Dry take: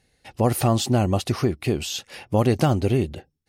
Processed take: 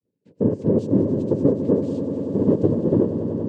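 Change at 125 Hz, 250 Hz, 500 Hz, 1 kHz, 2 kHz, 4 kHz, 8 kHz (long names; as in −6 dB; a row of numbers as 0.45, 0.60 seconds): −2.5 dB, +5.0 dB, +3.5 dB, −13.5 dB, below −15 dB, below −25 dB, below −25 dB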